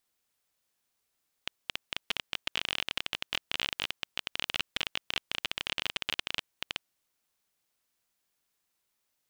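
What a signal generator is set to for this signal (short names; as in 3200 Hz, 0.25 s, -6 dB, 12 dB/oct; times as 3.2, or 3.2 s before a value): random clicks 22/s -12.5 dBFS 5.40 s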